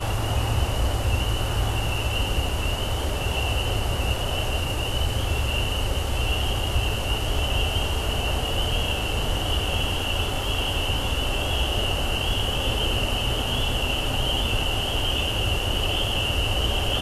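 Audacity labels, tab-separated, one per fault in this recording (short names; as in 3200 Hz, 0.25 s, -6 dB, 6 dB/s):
2.490000	2.490000	gap 2.8 ms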